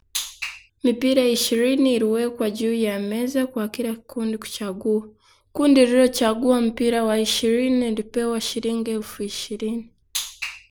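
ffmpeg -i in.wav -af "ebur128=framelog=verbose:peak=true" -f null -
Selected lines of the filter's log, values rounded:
Integrated loudness:
  I:         -21.8 LUFS
  Threshold: -32.0 LUFS
Loudness range:
  LRA:         5.3 LU
  Threshold: -41.6 LUFS
  LRA low:   -24.8 LUFS
  LRA high:  -19.5 LUFS
True peak:
  Peak:       -4.6 dBFS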